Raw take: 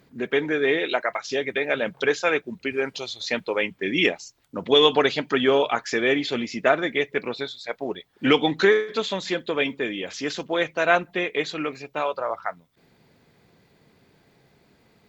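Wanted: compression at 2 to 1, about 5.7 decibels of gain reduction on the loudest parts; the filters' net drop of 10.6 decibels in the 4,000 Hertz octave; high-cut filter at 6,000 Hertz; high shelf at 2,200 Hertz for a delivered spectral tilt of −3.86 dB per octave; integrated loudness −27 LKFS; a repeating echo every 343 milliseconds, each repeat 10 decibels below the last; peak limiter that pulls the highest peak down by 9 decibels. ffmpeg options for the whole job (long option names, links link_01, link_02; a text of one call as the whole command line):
ffmpeg -i in.wav -af "lowpass=6000,highshelf=frequency=2200:gain=-4.5,equalizer=frequency=4000:width_type=o:gain=-9,acompressor=threshold=-24dB:ratio=2,alimiter=limit=-20.5dB:level=0:latency=1,aecho=1:1:343|686|1029|1372:0.316|0.101|0.0324|0.0104,volume=4.5dB" out.wav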